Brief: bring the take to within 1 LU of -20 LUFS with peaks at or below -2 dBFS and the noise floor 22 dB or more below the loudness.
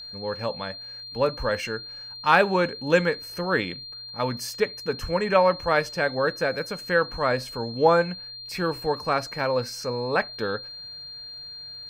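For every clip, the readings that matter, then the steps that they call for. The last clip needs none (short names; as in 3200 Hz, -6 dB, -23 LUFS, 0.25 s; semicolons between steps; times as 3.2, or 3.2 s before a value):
ticks 18/s; steady tone 4200 Hz; tone level -37 dBFS; loudness -25.0 LUFS; peak -3.5 dBFS; loudness target -20.0 LUFS
-> de-click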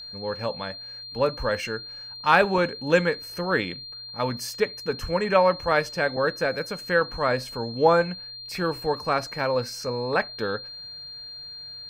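ticks 0.17/s; steady tone 4200 Hz; tone level -37 dBFS
-> notch 4200 Hz, Q 30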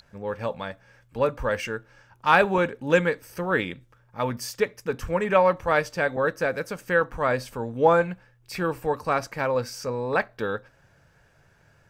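steady tone none; loudness -25.5 LUFS; peak -3.5 dBFS; loudness target -20.0 LUFS
-> gain +5.5 dB; limiter -2 dBFS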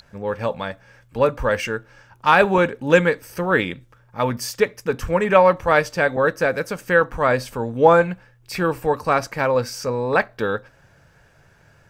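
loudness -20.0 LUFS; peak -2.0 dBFS; noise floor -55 dBFS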